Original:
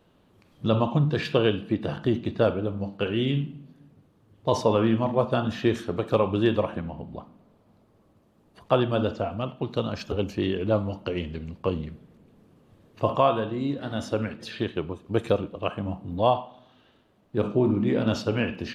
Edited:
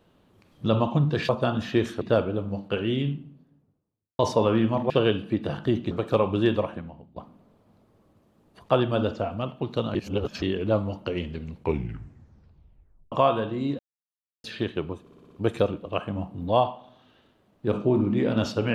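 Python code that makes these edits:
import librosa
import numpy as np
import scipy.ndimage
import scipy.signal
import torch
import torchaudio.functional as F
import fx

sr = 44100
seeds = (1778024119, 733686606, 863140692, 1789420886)

y = fx.studio_fade_out(x, sr, start_s=2.96, length_s=1.52)
y = fx.edit(y, sr, fx.swap(start_s=1.29, length_s=1.01, other_s=5.19, other_length_s=0.72),
    fx.fade_out_to(start_s=6.52, length_s=0.64, floor_db=-21.5),
    fx.reverse_span(start_s=9.95, length_s=0.47),
    fx.tape_stop(start_s=11.45, length_s=1.67),
    fx.silence(start_s=13.79, length_s=0.65),
    fx.stutter(start_s=15.01, slice_s=0.06, count=6), tone=tone)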